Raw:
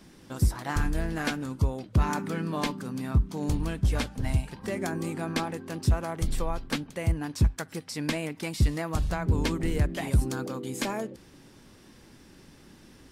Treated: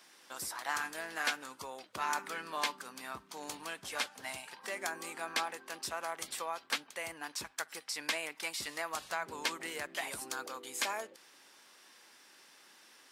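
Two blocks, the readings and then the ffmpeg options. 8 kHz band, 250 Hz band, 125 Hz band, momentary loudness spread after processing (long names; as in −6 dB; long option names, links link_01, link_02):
0.0 dB, −20.5 dB, −35.0 dB, 22 LU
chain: -af "highpass=880"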